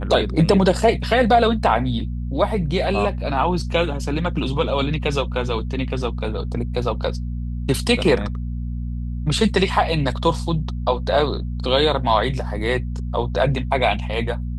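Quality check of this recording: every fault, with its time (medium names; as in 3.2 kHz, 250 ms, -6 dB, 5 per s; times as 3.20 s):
hum 60 Hz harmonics 4 -26 dBFS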